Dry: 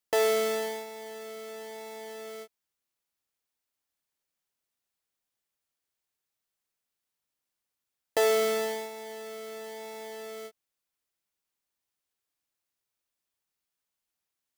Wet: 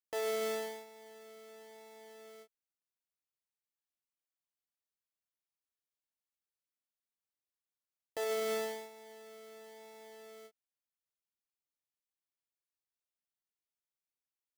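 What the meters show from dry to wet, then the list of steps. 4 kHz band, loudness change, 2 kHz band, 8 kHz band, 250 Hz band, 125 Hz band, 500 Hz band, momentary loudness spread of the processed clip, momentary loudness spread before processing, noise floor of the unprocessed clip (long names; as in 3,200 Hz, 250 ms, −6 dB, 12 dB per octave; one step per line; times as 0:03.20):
−9.5 dB, −5.5 dB, −9.5 dB, −9.5 dB, −8.5 dB, can't be measured, −9.5 dB, 20 LU, 17 LU, below −85 dBFS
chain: brickwall limiter −20.5 dBFS, peak gain reduction 7.5 dB
expander for the loud parts 1.5 to 1, over −44 dBFS
level −5.5 dB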